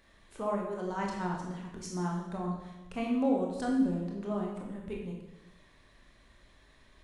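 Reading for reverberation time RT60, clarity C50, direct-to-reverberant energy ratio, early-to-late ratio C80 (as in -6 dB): 1.0 s, 3.0 dB, -1.0 dB, 5.5 dB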